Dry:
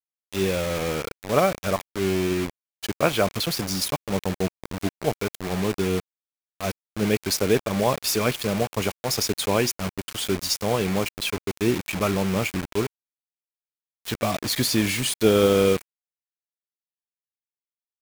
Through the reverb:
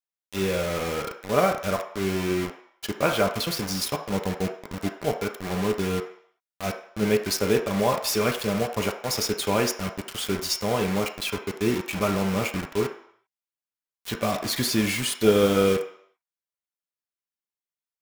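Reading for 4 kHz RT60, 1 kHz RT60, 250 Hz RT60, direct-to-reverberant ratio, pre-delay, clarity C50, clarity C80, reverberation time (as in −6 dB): 0.65 s, 0.70 s, 0.50 s, 2.0 dB, 3 ms, 8.5 dB, 12.5 dB, 0.65 s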